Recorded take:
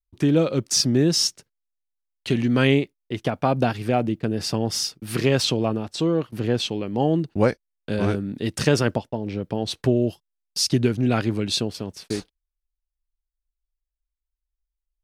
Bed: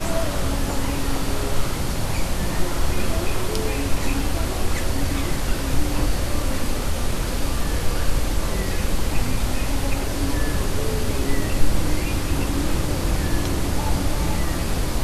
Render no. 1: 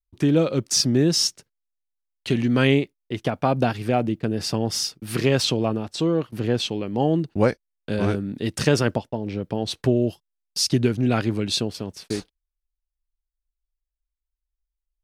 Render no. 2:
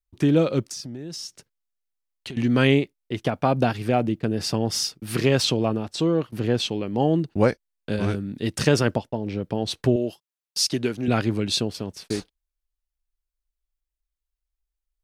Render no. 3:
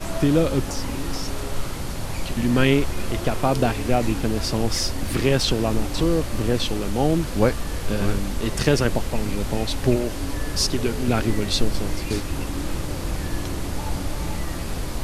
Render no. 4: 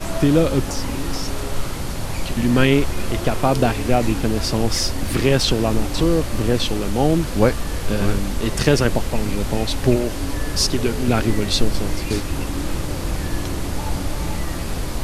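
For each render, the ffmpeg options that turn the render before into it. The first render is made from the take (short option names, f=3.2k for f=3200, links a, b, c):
-af anull
-filter_complex "[0:a]asettb=1/sr,asplit=3[a][b][c];[a]atrim=end=0.664[d];[b]atrim=start=0.66:end=2.37,asetpts=PTS-STARTPTS,afade=t=in:d=0.004:c=qsin,afade=t=out:st=1.706:d=0.004:c=qsin,acompressor=threshold=-32dB:ratio=8:attack=3.2:release=140:knee=1:detection=peak[e];[c]atrim=start=2.366[f];[d][e]acrossfade=d=0.004:c1=hsin:c2=qsin[g];[g][f]acrossfade=d=0.004:c1=qsin:c2=hsin,asettb=1/sr,asplit=3[h][i][j];[h]atrim=end=7.964[k];[i]atrim=start=7.96:end=8.43,asetpts=PTS-STARTPTS,afade=t=in:d=0.004:c=qsin,afade=t=out:st=0.466:d=0.004:c=qsin,equalizer=f=590:w=0.45:g=-4.5[l];[j]atrim=start=8.426[m];[k][l]acrossfade=d=0.004:c1=hsin:c2=qsin[n];[n][m]acrossfade=d=0.004:c1=qsin:c2=hsin,asettb=1/sr,asplit=3[o][p][q];[o]atrim=end=9.964[r];[p]atrim=start=9.96:end=11.08,asetpts=PTS-STARTPTS,afade=t=in:d=0.004:c=qsin,afade=t=out:st=1.116:d=0.004:c=qsin,highpass=f=380:p=1[s];[q]atrim=start=11.076[t];[r][s]acrossfade=d=0.004:c1=hsin:c2=qsin[u];[u][t]acrossfade=d=0.004:c1=qsin:c2=hsin"
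-filter_complex "[1:a]volume=-5dB[a];[0:a][a]amix=inputs=2:normalize=0"
-af "volume=3dB,alimiter=limit=-2dB:level=0:latency=1"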